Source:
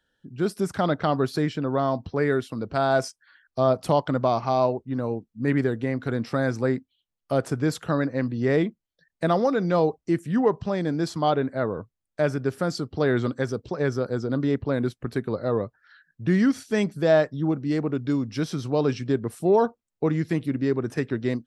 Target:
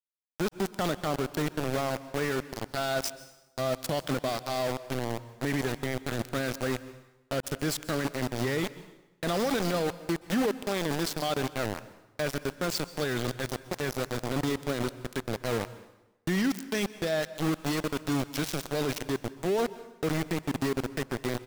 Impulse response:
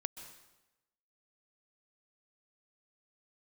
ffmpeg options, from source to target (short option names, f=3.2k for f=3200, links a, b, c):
-filter_complex "[0:a]highshelf=f=2.5k:g=4.5,asplit=2[a][b];[b]adelay=699.7,volume=-29dB,highshelf=f=4k:g=-15.7[c];[a][c]amix=inputs=2:normalize=0,acrossover=split=2000[d][e];[e]dynaudnorm=f=450:g=11:m=6.5dB[f];[d][f]amix=inputs=2:normalize=0,equalizer=f=970:w=3.9:g=-8.5,aeval=exprs='val(0)*gte(abs(val(0)),0.0668)':c=same,alimiter=limit=-19dB:level=0:latency=1:release=14,asplit=2[g][h];[1:a]atrim=start_sample=2205[i];[h][i]afir=irnorm=-1:irlink=0,volume=-1.5dB[j];[g][j]amix=inputs=2:normalize=0,volume=-5.5dB"